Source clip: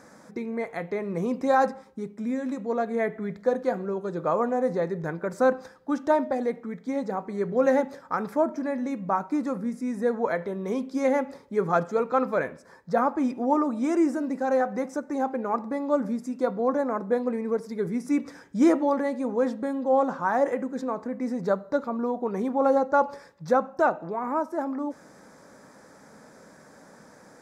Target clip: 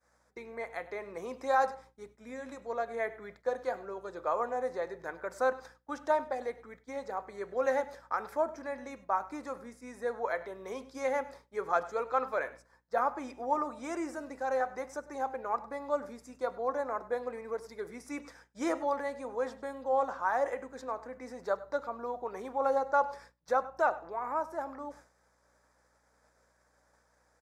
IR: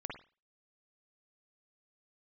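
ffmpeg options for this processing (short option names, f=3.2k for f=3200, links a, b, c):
-af "highpass=580,aeval=exprs='val(0)+0.001*(sin(2*PI*60*n/s)+sin(2*PI*2*60*n/s)/2+sin(2*PI*3*60*n/s)/3+sin(2*PI*4*60*n/s)/4+sin(2*PI*5*60*n/s)/5)':c=same,aecho=1:1:100:0.119,agate=range=-33dB:threshold=-44dB:ratio=3:detection=peak,volume=-4dB"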